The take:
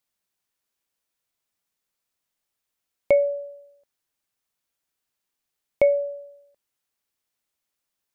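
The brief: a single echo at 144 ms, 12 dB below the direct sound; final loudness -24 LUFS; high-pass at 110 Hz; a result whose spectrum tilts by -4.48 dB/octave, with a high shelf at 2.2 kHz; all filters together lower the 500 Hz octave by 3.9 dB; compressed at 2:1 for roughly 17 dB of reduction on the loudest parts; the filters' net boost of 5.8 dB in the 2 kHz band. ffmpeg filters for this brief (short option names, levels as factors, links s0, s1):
-af "highpass=110,equalizer=f=500:t=o:g=-5,equalizer=f=2000:t=o:g=3.5,highshelf=f=2200:g=5.5,acompressor=threshold=0.00355:ratio=2,aecho=1:1:144:0.251,volume=8.91"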